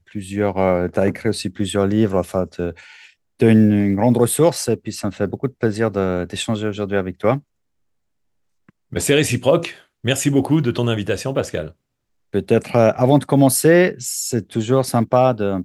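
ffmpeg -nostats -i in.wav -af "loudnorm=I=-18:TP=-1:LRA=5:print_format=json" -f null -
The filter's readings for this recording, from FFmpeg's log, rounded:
"input_i" : "-17.9",
"input_tp" : "-1.6",
"input_lra" : "5.5",
"input_thresh" : "-28.3",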